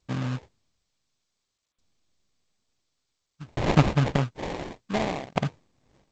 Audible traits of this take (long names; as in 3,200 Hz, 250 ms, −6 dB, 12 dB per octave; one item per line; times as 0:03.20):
phaser sweep stages 4, 0.82 Hz, lowest notch 730–3,100 Hz
tremolo saw down 0.56 Hz, depth 100%
aliases and images of a low sample rate 1,400 Hz, jitter 20%
G.722